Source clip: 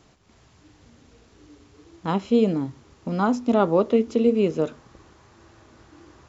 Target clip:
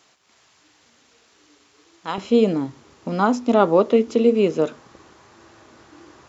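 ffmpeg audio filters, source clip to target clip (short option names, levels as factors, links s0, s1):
-af "asetnsamples=n=441:p=0,asendcmd='2.18 highpass f 260',highpass=f=1400:p=1,volume=1.78"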